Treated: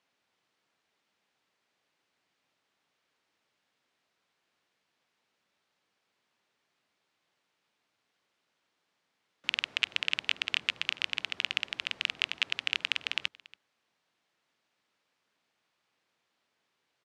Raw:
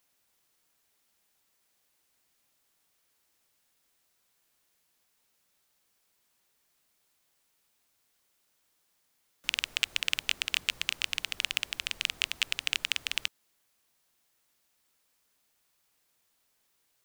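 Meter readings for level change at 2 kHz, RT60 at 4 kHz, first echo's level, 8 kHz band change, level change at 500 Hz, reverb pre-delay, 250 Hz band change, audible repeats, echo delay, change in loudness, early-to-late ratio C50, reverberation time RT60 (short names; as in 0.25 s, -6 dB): +0.5 dB, none, -22.5 dB, -10.5 dB, +1.5 dB, none, +1.0 dB, 1, 0.282 s, -0.5 dB, none, none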